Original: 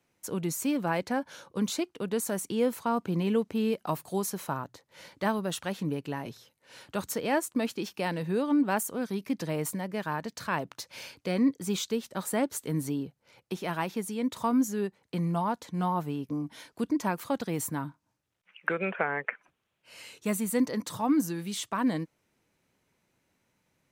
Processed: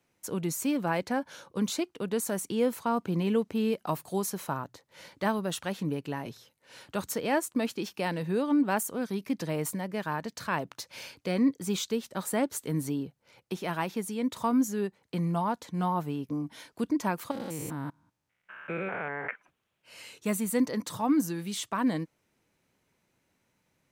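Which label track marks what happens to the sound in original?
17.310000	19.310000	stepped spectrum every 0.2 s

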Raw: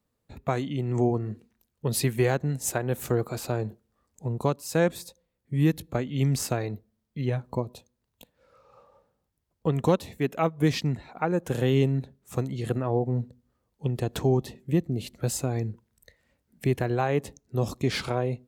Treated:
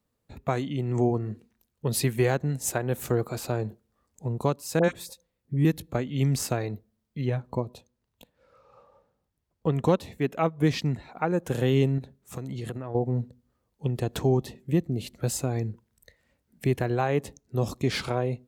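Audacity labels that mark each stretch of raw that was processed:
4.790000	5.650000	dispersion highs, late by 50 ms, half as late at 1100 Hz
7.270000	10.790000	high shelf 6000 Hz -5.5 dB
11.980000	12.950000	compressor, threshold -30 dBFS

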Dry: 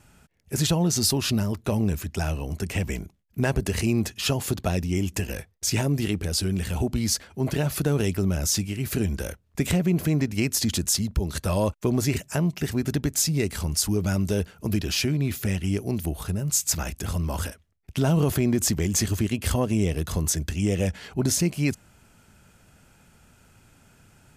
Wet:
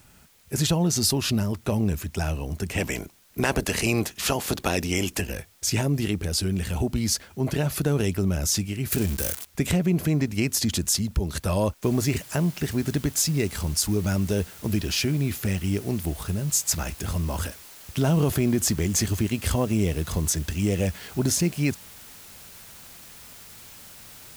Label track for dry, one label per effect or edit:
2.770000	5.200000	spectral limiter ceiling under each frame's peak by 16 dB
8.920000	9.450000	switching spikes of -20 dBFS
11.830000	11.830000	noise floor step -59 dB -46 dB

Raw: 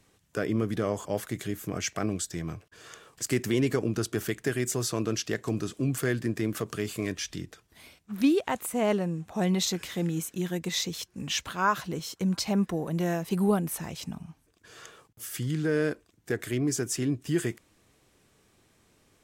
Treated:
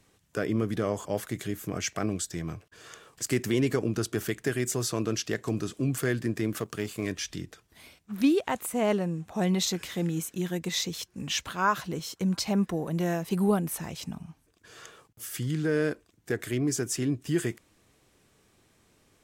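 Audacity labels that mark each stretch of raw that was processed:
6.590000	7.030000	G.711 law mismatch coded by A

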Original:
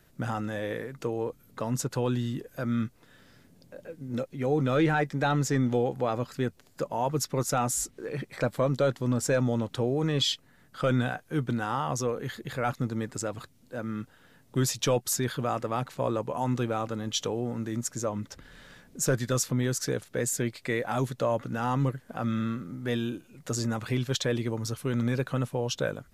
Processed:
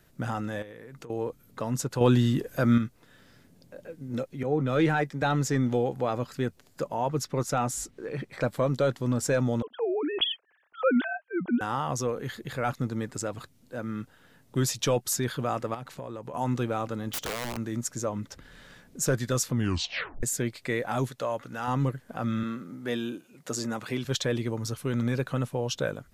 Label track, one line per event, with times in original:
0.620000	1.100000	compressor 12:1, threshold -40 dBFS
2.010000	2.780000	gain +7.5 dB
4.430000	5.220000	three-band expander depth 70%
6.940000	8.420000	high shelf 6600 Hz -7.5 dB
9.620000	11.610000	sine-wave speech
15.740000	16.340000	compressor, threshold -34 dBFS
17.120000	17.570000	wrapped overs gain 26.5 dB
19.530000	19.530000	tape stop 0.70 s
21.080000	21.680000	low shelf 430 Hz -10 dB
22.430000	24.050000	HPF 190 Hz

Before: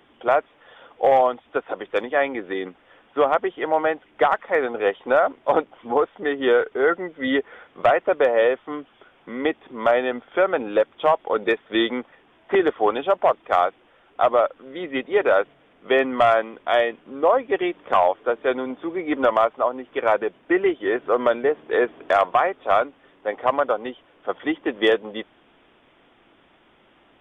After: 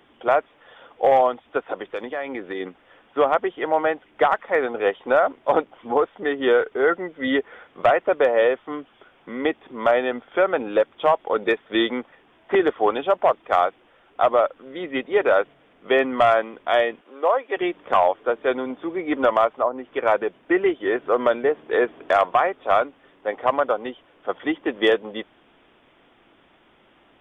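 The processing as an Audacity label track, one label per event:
1.920000	2.600000	compressor 4:1, threshold -25 dBFS
17.010000	17.570000	Bessel high-pass 510 Hz, order 4
19.500000	20.060000	treble ducked by the level closes to 1400 Hz, closed at -18 dBFS

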